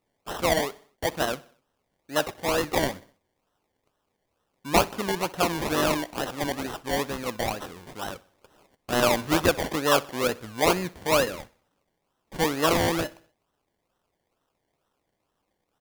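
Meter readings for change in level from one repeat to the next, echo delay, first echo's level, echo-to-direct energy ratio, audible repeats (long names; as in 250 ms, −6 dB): −6.0 dB, 63 ms, −21.5 dB, −20.5 dB, 3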